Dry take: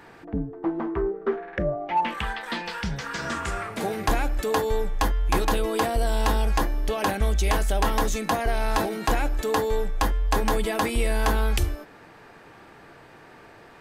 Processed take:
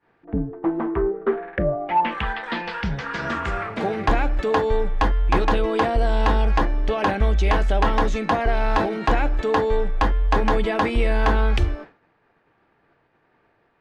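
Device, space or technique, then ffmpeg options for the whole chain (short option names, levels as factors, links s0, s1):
hearing-loss simulation: -af "lowpass=3100,agate=range=0.0224:threshold=0.0158:ratio=3:detection=peak,volume=1.58"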